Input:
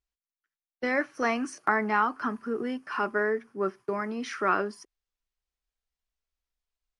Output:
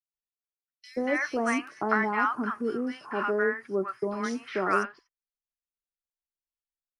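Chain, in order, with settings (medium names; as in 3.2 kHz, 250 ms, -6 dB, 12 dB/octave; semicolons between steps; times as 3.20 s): three bands offset in time highs, lows, mids 140/240 ms, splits 890/3700 Hz; gate with hold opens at -45 dBFS; trim +1.5 dB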